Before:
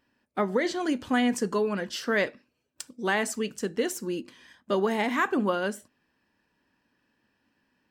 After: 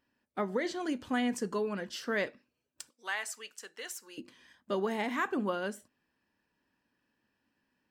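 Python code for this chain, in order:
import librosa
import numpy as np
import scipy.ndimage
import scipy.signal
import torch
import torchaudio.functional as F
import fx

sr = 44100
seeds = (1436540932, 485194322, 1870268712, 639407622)

y = fx.highpass(x, sr, hz=1000.0, slope=12, at=(2.89, 4.18))
y = y * librosa.db_to_amplitude(-6.5)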